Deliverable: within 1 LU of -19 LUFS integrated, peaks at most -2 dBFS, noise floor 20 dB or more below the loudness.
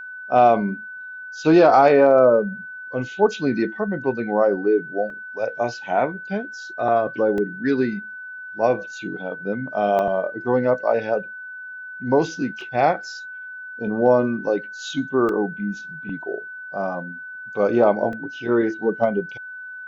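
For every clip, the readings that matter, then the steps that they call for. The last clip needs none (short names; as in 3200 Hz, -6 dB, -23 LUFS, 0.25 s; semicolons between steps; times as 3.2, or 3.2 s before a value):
dropouts 6; longest dropout 1.5 ms; steady tone 1500 Hz; tone level -33 dBFS; loudness -21.0 LUFS; peak -3.5 dBFS; loudness target -19.0 LUFS
-> interpolate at 5.1/7.38/9.99/12.61/15.29/18.13, 1.5 ms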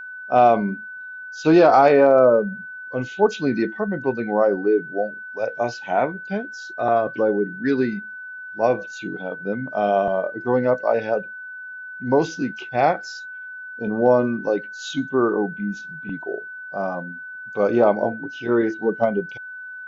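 dropouts 0; steady tone 1500 Hz; tone level -33 dBFS
-> notch 1500 Hz, Q 30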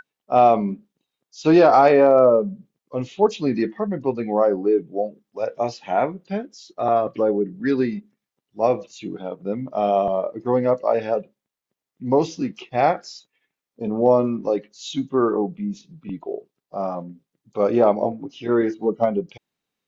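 steady tone none; loudness -21.0 LUFS; peak -3.0 dBFS; loudness target -19.0 LUFS
-> gain +2 dB; limiter -2 dBFS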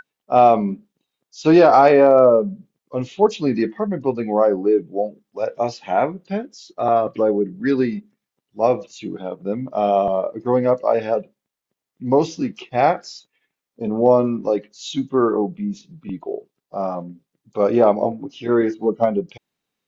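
loudness -19.0 LUFS; peak -2.0 dBFS; noise floor -85 dBFS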